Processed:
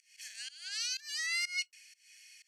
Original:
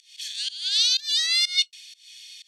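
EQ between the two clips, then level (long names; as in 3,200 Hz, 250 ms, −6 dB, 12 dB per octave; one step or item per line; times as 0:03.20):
high-shelf EQ 3,600 Hz −7.5 dB
phaser with its sweep stopped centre 980 Hz, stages 6
0.0 dB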